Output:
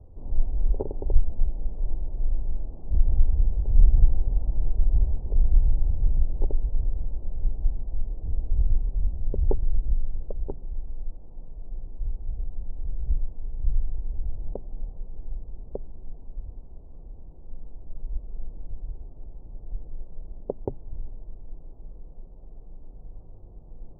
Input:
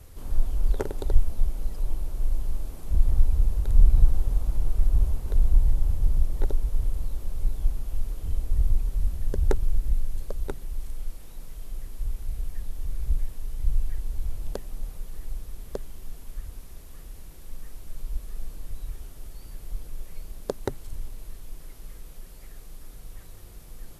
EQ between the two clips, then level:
Butterworth low-pass 870 Hz 36 dB per octave
high-frequency loss of the air 340 metres
0.0 dB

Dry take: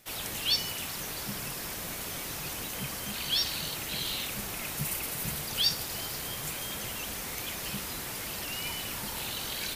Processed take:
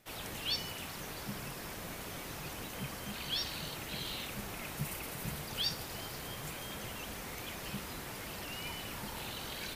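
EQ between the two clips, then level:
high-shelf EQ 3,100 Hz −8.5 dB
−2.5 dB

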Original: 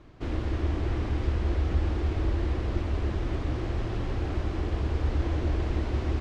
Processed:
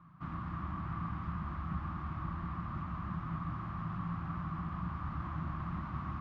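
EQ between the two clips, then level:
pair of resonant band-passes 440 Hz, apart 2.8 octaves
+7.5 dB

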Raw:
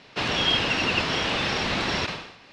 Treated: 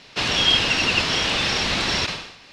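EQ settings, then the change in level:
low-shelf EQ 61 Hz +8 dB
high-shelf EQ 3,400 Hz +11.5 dB
0.0 dB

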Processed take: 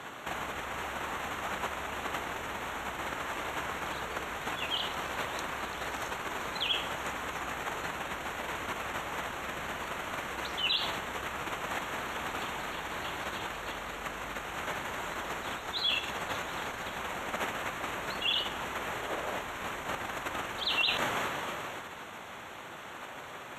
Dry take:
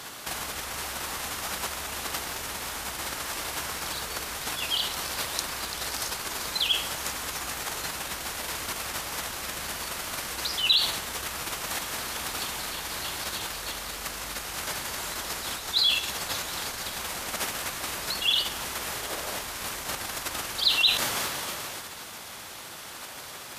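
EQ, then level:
moving average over 9 samples
low-shelf EQ 90 Hz −8 dB
+1.5 dB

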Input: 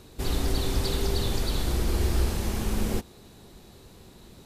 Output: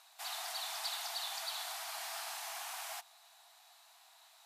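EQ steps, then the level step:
linear-phase brick-wall high-pass 630 Hz
−5.0 dB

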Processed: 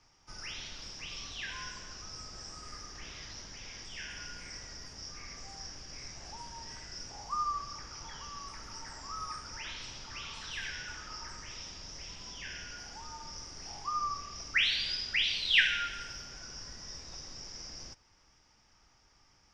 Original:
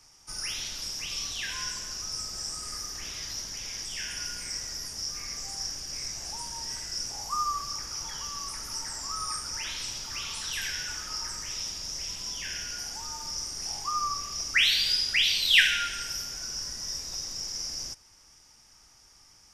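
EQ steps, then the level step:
high-frequency loss of the air 170 metres
−2.5 dB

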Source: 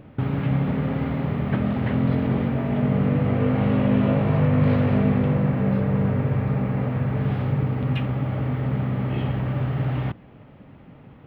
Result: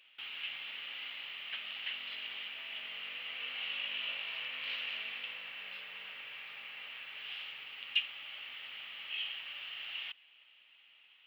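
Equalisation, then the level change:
high-pass with resonance 2,900 Hz, resonance Q 5.8
−5.0 dB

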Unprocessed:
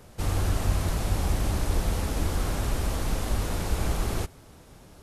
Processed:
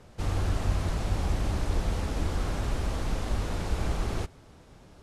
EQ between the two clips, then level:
high-frequency loss of the air 55 metres
−2.0 dB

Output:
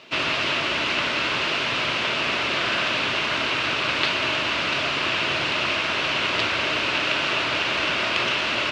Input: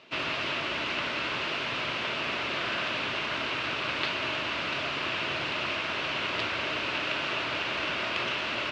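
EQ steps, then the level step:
high-shelf EQ 6,100 Hz +8.5 dB
+6.5 dB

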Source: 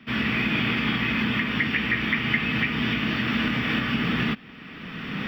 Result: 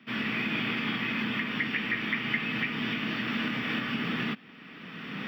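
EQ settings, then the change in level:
high-pass filter 160 Hz 12 dB per octave
−5.5 dB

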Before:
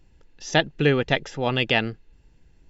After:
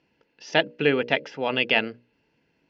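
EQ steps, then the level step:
high-frequency loss of the air 120 metres
loudspeaker in its box 350–5,100 Hz, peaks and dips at 360 Hz −7 dB, 550 Hz −4 dB, 780 Hz −8 dB, 1,200 Hz −8 dB, 1,800 Hz −6 dB, 3,700 Hz −10 dB
mains-hum notches 60/120/180/240/300/360/420/480/540/600 Hz
+6.0 dB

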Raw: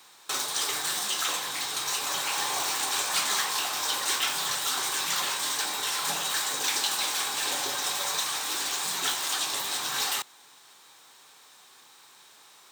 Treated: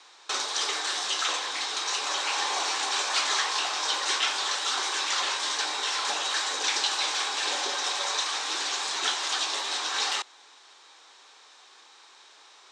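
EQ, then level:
high-pass filter 310 Hz 24 dB per octave
low-pass filter 6,600 Hz 24 dB per octave
+2.0 dB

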